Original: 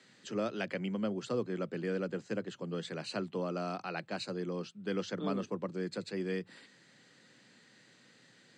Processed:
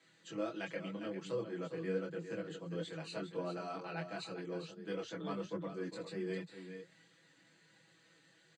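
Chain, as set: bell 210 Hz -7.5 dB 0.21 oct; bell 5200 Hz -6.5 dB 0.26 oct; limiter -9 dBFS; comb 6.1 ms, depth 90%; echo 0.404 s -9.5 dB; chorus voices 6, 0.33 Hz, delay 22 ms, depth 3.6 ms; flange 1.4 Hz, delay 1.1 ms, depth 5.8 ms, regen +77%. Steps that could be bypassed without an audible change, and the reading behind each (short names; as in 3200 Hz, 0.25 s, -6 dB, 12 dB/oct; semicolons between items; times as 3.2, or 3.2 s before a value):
limiter -9 dBFS: input peak -21.0 dBFS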